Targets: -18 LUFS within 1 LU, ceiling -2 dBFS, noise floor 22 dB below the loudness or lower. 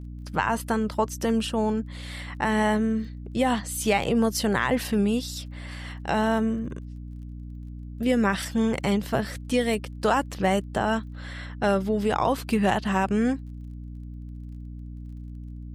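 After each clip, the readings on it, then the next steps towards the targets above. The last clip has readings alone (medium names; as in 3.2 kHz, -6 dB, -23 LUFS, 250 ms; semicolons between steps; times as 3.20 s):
tick rate 29 per s; hum 60 Hz; highest harmonic 300 Hz; hum level -35 dBFS; loudness -25.5 LUFS; peak level -8.5 dBFS; loudness target -18.0 LUFS
-> de-click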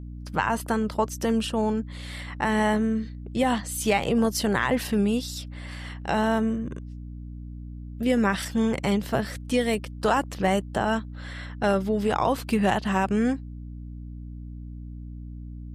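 tick rate 0 per s; hum 60 Hz; highest harmonic 300 Hz; hum level -35 dBFS
-> hum notches 60/120/180/240/300 Hz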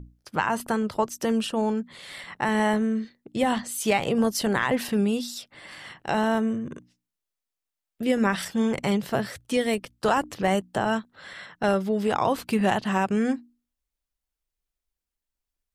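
hum not found; loudness -25.5 LUFS; peak level -8.5 dBFS; loudness target -18.0 LUFS
-> trim +7.5 dB; peak limiter -2 dBFS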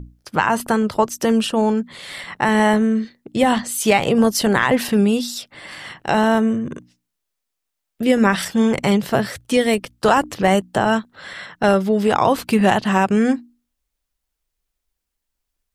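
loudness -18.5 LUFS; peak level -2.0 dBFS; noise floor -79 dBFS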